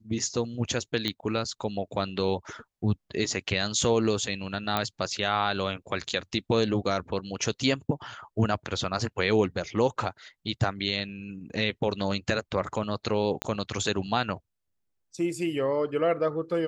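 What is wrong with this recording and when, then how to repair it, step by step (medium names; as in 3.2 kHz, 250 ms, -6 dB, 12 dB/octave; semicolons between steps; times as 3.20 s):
1.08 s: pop -15 dBFS
4.77 s: pop -12 dBFS
13.42 s: pop -13 dBFS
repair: de-click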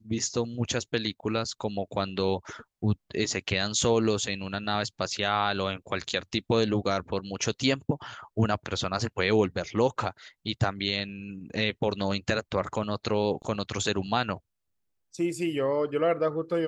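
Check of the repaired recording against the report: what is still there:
4.77 s: pop
13.42 s: pop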